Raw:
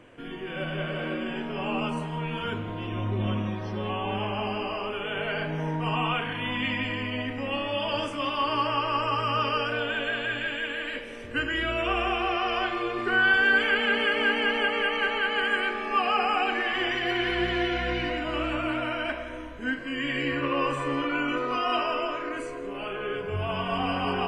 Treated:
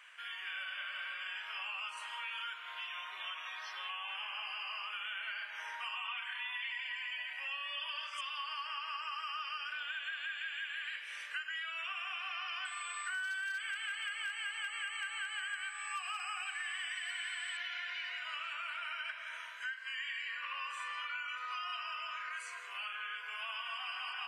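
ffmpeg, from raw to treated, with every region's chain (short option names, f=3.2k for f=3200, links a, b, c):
-filter_complex "[0:a]asettb=1/sr,asplit=3[a][b][c];[a]atrim=end=6.074[d];[b]atrim=start=6.07:end=8.21,asetpts=PTS-STARTPTS,afade=t=in:d=0.004:c=qsin,afade=t=out:st=2.136:d=0.004:c=qsin,aecho=1:1:5.2:0.86,atrim=end_sample=94374,acrossover=split=5200[e][f];[f]adelay=100[g];[e][g]amix=inputs=2:normalize=0,atrim=end_sample=94374[h];[c]atrim=start=8.206[i];[d][h]acrossfade=d=0.004:c1=hsin:c2=qsin[j];[j][i]acrossfade=d=0.004:c1=qsin:c2=hsin,asettb=1/sr,asplit=3[k][l][m];[k]atrim=end=12.654[n];[l]atrim=start=12.65:end=17.57,asetpts=PTS-STARTPTS,afade=t=in:d=0.004:c=qsin,afade=t=out:st=4.916:d=0.004:c=qsin,aeval=exprs='val(0)+0.00794*sin(2*PI*8000*n/s)':c=same,highpass=320,volume=16.5dB,asoftclip=hard,volume=-16.5dB[o];[m]atrim=start=17.566[p];[n][o]acrossfade=d=0.004:c1=hsin:c2=qsin[q];[q][p]acrossfade=d=0.004:c1=qsin:c2=hsin,highpass=f=1.3k:w=0.5412,highpass=f=1.3k:w=1.3066,acompressor=threshold=-42dB:ratio=6,volume=3dB"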